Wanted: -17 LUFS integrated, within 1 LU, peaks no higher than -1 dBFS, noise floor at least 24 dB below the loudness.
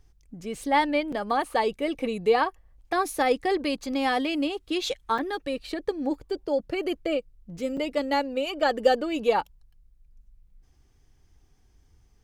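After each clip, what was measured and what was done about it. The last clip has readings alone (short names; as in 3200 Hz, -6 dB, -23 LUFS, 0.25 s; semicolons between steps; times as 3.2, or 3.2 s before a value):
dropouts 3; longest dropout 5.2 ms; loudness -27.0 LUFS; peak -8.0 dBFS; loudness target -17.0 LUFS
-> interpolate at 1.12/5.18/7.77, 5.2 ms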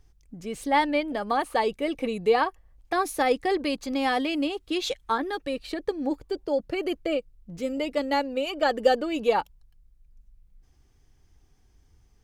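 dropouts 0; loudness -27.0 LUFS; peak -8.0 dBFS; loudness target -17.0 LUFS
-> gain +10 dB; limiter -1 dBFS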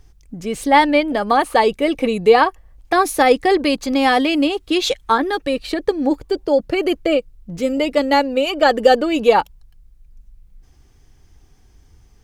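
loudness -17.0 LUFS; peak -1.0 dBFS; noise floor -52 dBFS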